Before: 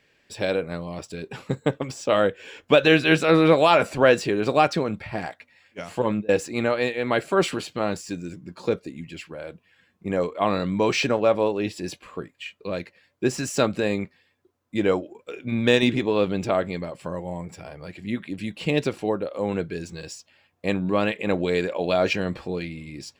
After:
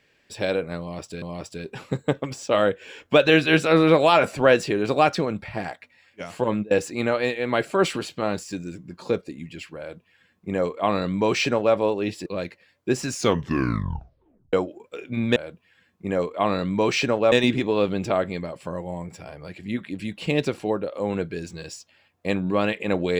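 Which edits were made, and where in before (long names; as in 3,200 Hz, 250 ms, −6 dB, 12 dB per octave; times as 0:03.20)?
0:00.80–0:01.22: repeat, 2 plays
0:09.37–0:11.33: duplicate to 0:15.71
0:11.84–0:12.61: remove
0:13.41: tape stop 1.47 s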